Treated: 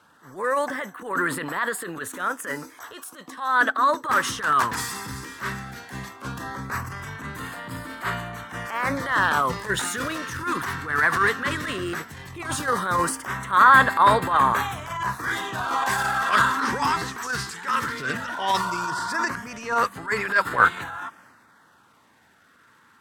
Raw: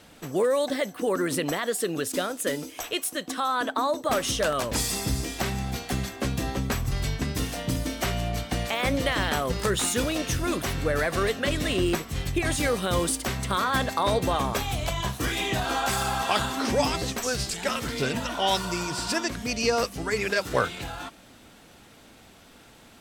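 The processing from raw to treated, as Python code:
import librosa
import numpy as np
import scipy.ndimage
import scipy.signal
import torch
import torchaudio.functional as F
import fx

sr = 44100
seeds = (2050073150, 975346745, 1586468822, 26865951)

y = scipy.signal.sosfilt(scipy.signal.butter(4, 81.0, 'highpass', fs=sr, output='sos'), x)
y = fx.band_shelf(y, sr, hz=1300.0, db=14.0, octaves=1.3)
y = fx.transient(y, sr, attack_db=-10, sustain_db=5)
y = fx.filter_lfo_notch(y, sr, shape='sine', hz=0.16, low_hz=570.0, high_hz=6000.0, q=2.8)
y = fx.upward_expand(y, sr, threshold_db=-35.0, expansion=1.5)
y = F.gain(torch.from_numpy(y), 1.0).numpy()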